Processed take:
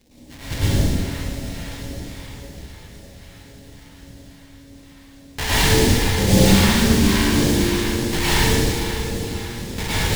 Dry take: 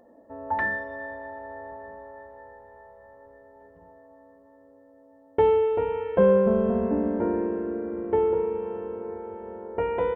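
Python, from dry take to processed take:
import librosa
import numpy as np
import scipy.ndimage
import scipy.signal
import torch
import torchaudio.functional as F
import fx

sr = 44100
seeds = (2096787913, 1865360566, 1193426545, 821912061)

y = np.r_[np.sort(x[:len(x) // 32 * 32].reshape(-1, 32), axis=1).ravel(), x[len(x) // 32 * 32:]]
y = fx.low_shelf(y, sr, hz=480.0, db=5.5)
y = fx.sample_hold(y, sr, seeds[0], rate_hz=1300.0, jitter_pct=20)
y = np.clip(y, -10.0 ** (-16.5 / 20.0), 10.0 ** (-16.5 / 20.0))
y = fx.phaser_stages(y, sr, stages=2, low_hz=370.0, high_hz=1300.0, hz=1.8, feedback_pct=45)
y = fx.rev_plate(y, sr, seeds[1], rt60_s=1.4, hf_ratio=0.75, predelay_ms=90, drr_db=-9.5)
y = y * librosa.db_to_amplitude(-1.0)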